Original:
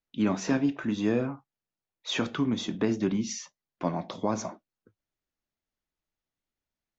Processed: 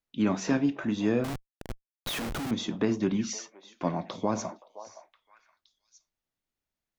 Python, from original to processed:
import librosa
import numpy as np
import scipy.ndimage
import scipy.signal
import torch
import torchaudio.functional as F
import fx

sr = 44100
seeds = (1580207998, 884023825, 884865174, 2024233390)

y = fx.echo_stepped(x, sr, ms=519, hz=740.0, octaves=1.4, feedback_pct=70, wet_db=-12)
y = fx.schmitt(y, sr, flips_db=-39.0, at=(1.24, 2.51))